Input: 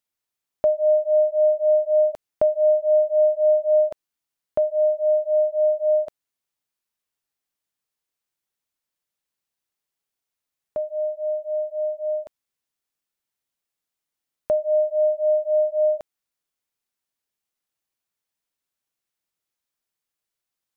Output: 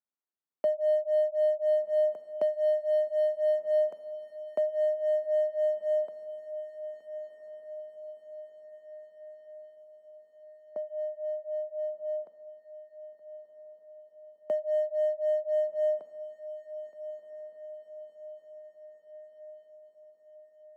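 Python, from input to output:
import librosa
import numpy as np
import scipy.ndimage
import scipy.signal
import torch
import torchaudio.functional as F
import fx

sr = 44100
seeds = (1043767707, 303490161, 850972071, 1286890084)

y = fx.wiener(x, sr, points=15)
y = scipy.signal.sosfilt(scipy.signal.butter(8, 170.0, 'highpass', fs=sr, output='sos'), y)
y = fx.echo_diffused(y, sr, ms=1399, feedback_pct=57, wet_db=-13.0)
y = y * librosa.db_to_amplitude(-7.5)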